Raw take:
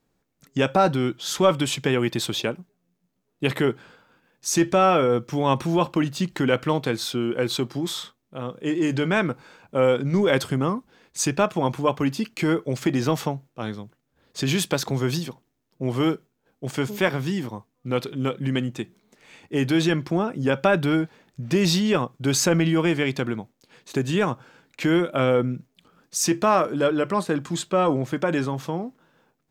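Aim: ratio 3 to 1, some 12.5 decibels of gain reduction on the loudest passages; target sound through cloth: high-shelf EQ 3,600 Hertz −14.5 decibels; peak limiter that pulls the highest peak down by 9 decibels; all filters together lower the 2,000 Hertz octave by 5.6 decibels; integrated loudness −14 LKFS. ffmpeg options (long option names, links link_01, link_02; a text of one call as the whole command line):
ffmpeg -i in.wav -af "equalizer=frequency=2000:width_type=o:gain=-3.5,acompressor=threshold=-32dB:ratio=3,alimiter=level_in=2dB:limit=-24dB:level=0:latency=1,volume=-2dB,highshelf=frequency=3600:gain=-14.5,volume=23.5dB" out.wav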